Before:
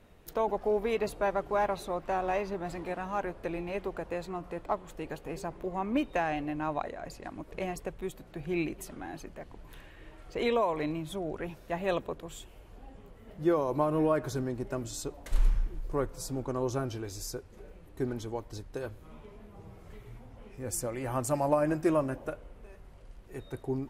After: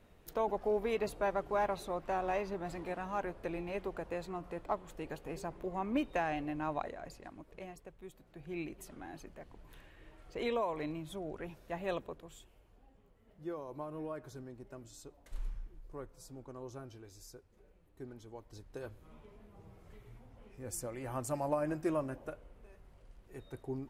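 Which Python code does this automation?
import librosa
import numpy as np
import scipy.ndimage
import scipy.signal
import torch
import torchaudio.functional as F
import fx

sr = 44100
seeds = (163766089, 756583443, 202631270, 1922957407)

y = fx.gain(x, sr, db=fx.line((6.9, -4.0), (7.85, -15.0), (8.99, -6.5), (11.91, -6.5), (12.92, -15.0), (18.21, -15.0), (18.81, -7.0)))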